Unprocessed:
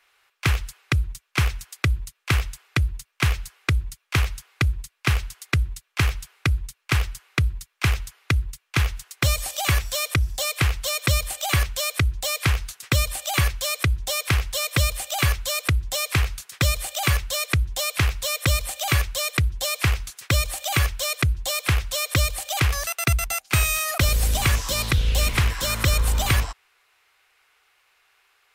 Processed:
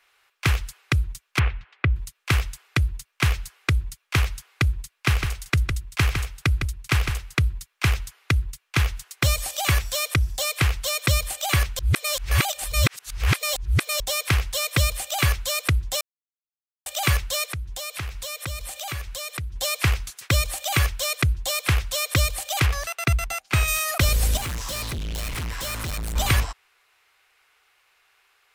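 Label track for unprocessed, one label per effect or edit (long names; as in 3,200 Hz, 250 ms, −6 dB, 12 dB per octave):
1.390000	1.960000	low-pass filter 2,800 Hz 24 dB per octave
4.940000	7.450000	single-tap delay 157 ms −6.5 dB
11.790000	14.000000	reverse
16.010000	16.860000	silence
17.450000	19.560000	downward compressor 3 to 1, threshold −31 dBFS
22.660000	23.680000	high-shelf EQ 5,700 Hz −9.5 dB
24.370000	26.160000	hard clipping −27.5 dBFS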